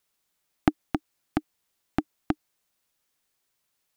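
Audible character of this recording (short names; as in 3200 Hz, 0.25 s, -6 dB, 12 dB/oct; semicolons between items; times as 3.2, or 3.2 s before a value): noise floor -77 dBFS; spectral tilt -6.0 dB/oct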